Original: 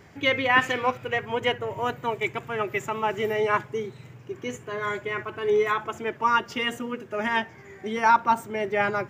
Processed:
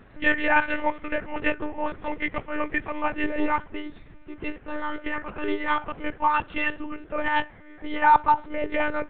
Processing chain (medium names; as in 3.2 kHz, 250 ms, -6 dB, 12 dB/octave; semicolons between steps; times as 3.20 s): pitch bend over the whole clip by -2.5 st ending unshifted; monotone LPC vocoder at 8 kHz 300 Hz; trim +2 dB